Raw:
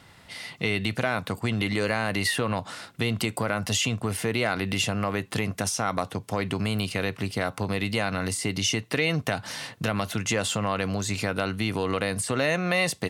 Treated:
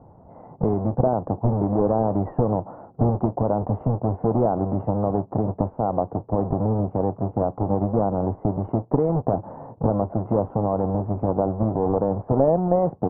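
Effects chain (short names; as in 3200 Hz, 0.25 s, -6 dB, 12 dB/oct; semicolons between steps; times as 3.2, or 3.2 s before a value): half-waves squared off; steep low-pass 860 Hz 36 dB/oct; tilt shelf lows -4 dB, about 680 Hz; gain +3.5 dB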